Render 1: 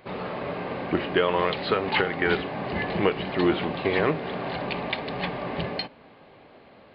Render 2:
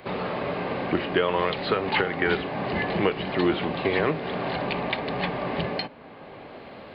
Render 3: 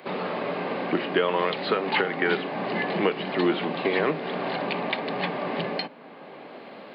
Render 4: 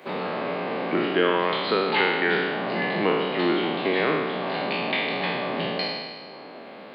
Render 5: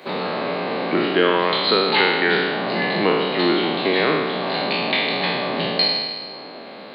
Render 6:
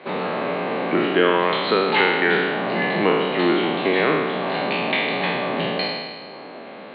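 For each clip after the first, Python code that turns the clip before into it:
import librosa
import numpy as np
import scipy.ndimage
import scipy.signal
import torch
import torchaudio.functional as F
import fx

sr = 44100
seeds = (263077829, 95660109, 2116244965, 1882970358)

y1 = fx.band_squash(x, sr, depth_pct=40)
y2 = scipy.signal.sosfilt(scipy.signal.butter(4, 170.0, 'highpass', fs=sr, output='sos'), y1)
y3 = fx.spec_trails(y2, sr, decay_s=1.52)
y3 = y3 * 10.0 ** (-2.0 / 20.0)
y4 = fx.peak_eq(y3, sr, hz=4100.0, db=10.0, octaves=0.31)
y4 = y4 * 10.0 ** (4.0 / 20.0)
y5 = scipy.signal.sosfilt(scipy.signal.butter(4, 3200.0, 'lowpass', fs=sr, output='sos'), y4)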